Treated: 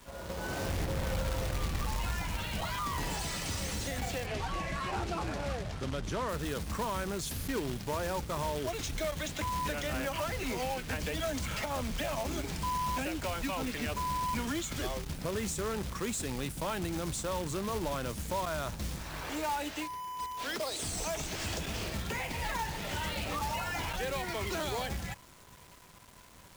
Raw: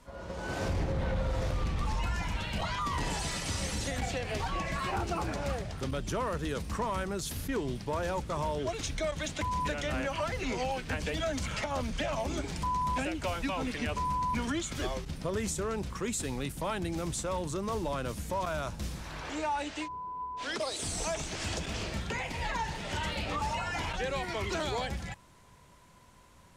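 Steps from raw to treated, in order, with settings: peak limiter -27.5 dBFS, peak gain reduction 4 dB; companded quantiser 4-bit; 4.26–6.29 s: distance through air 57 m

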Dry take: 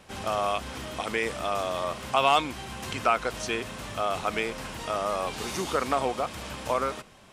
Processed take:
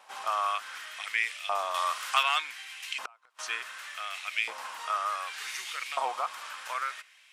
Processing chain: 1.74–2.23 s: treble shelf 2.2 kHz +9.5 dB; hard clipper -7.5 dBFS, distortion -31 dB; LFO high-pass saw up 0.67 Hz 850–2600 Hz; 2.98–3.39 s: inverted gate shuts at -19 dBFS, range -34 dB; trim -4 dB

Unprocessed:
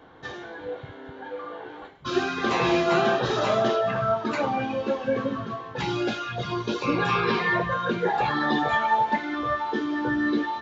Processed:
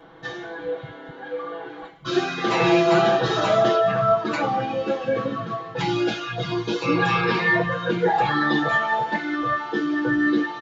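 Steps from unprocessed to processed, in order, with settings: comb 6.1 ms, depth 98%

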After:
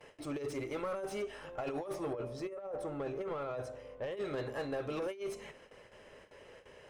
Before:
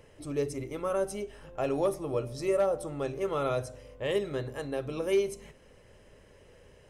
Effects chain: gate with hold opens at -47 dBFS; compressor with a negative ratio -32 dBFS, ratio -0.5; overdrive pedal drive 18 dB, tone 3.4 kHz, clips at -19 dBFS, from 2.13 s tone 1 kHz, from 4.17 s tone 2.6 kHz; slew-rate limiter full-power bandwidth 64 Hz; trim -8.5 dB

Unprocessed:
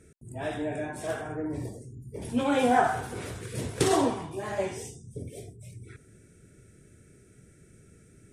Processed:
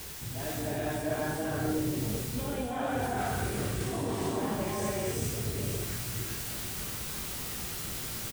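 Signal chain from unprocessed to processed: added noise white -46 dBFS; reverse; compression 16:1, threshold -37 dBFS, peak gain reduction 20.5 dB; reverse; bass shelf 170 Hz +7.5 dB; doubling 19 ms -12 dB; gated-style reverb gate 460 ms rising, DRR -3.5 dB; trim +2.5 dB

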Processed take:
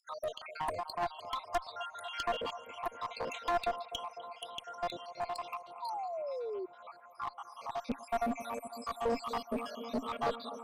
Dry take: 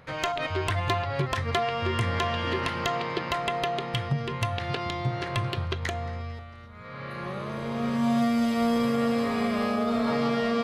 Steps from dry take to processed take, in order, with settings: random holes in the spectrogram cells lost 80%; LFO high-pass saw down 2.4 Hz 250–2500 Hz; peaking EQ 270 Hz +13.5 dB 0.29 oct; static phaser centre 750 Hz, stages 4; bucket-brigade echo 251 ms, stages 4096, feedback 83%, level -15 dB; one-sided clip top -33.5 dBFS; painted sound fall, 5.82–6.66 s, 360–980 Hz -38 dBFS

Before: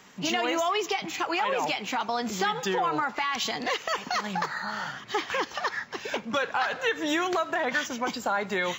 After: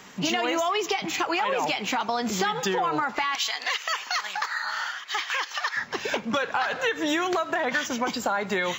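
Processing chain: 3.35–5.77 s: high-pass 1.2 kHz 12 dB/octave; compression 2.5:1, threshold -30 dBFS, peak gain reduction 6 dB; trim +6 dB

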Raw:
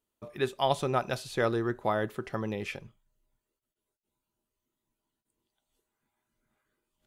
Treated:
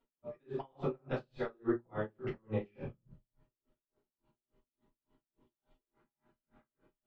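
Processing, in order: bass shelf 110 Hz -11.5 dB; band-stop 660 Hz, Q 12; slow attack 181 ms; compression 6:1, threshold -45 dBFS, peak gain reduction 17 dB; tape spacing loss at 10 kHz 38 dB; simulated room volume 330 m³, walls furnished, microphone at 7.1 m; logarithmic tremolo 3.5 Hz, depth 37 dB; trim +6 dB

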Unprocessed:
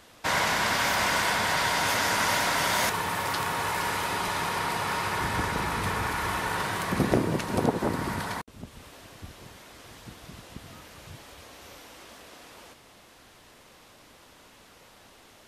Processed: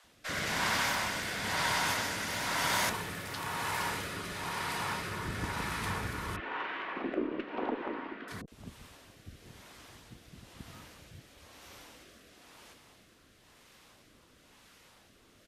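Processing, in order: 6.36–8.28 s: elliptic band-pass 280–2900 Hz, stop band 50 dB; bands offset in time highs, lows 40 ms, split 540 Hz; Chebyshev shaper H 8 -35 dB, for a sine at -12.5 dBFS; rotary cabinet horn 1 Hz; trim -3.5 dB

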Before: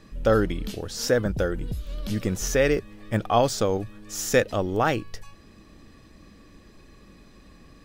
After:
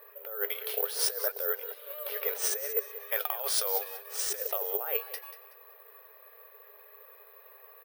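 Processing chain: FFT band-pass 400–7800 Hz; low-pass that closes with the level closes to 2.6 kHz, closed at -19.5 dBFS; 3.08–4.02 s: tilt EQ +3.5 dB/octave; level-controlled noise filter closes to 1.8 kHz, open at -23 dBFS; compressor with a negative ratio -32 dBFS, ratio -1; flange 0.71 Hz, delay 1.7 ms, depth 7.6 ms, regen +65%; on a send: feedback delay 187 ms, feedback 29%, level -14 dB; on the sum: careless resampling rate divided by 3×, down filtered, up zero stuff

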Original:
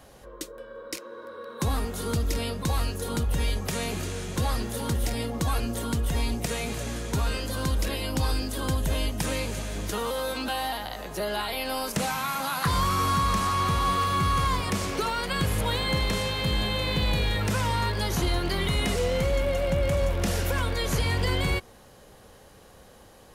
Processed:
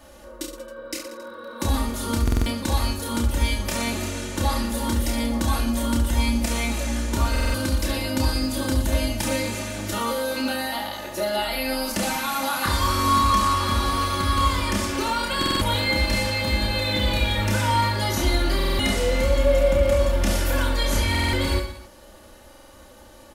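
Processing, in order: comb 3.4 ms, depth 87%; reverse bouncing-ball echo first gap 30 ms, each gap 1.3×, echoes 5; buffer glitch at 2.23/7.31/15.38/18.56/21.10/22.49 s, samples 2048, times 4

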